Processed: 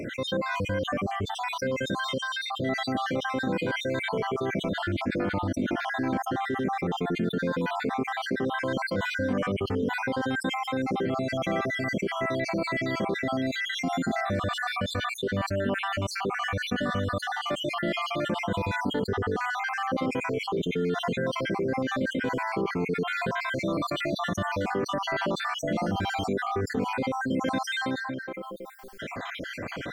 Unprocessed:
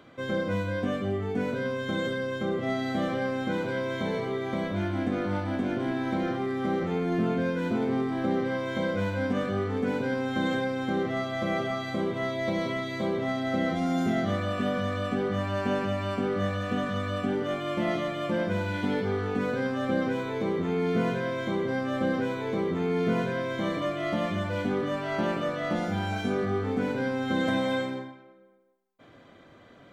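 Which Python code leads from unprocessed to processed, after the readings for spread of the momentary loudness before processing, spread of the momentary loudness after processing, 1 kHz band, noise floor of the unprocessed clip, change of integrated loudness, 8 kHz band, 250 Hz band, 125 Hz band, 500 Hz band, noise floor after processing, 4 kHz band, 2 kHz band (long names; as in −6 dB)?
3 LU, 2 LU, +3.5 dB, −53 dBFS, 0.0 dB, can't be measured, −2.0 dB, −1.0 dB, −1.5 dB, −38 dBFS, +5.5 dB, +4.0 dB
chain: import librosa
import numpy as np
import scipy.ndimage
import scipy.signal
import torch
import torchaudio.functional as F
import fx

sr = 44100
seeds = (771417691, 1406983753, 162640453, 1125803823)

y = fx.spec_dropout(x, sr, seeds[0], share_pct=57)
y = fx.env_flatten(y, sr, amount_pct=70)
y = F.gain(torch.from_numpy(y), -1.5).numpy()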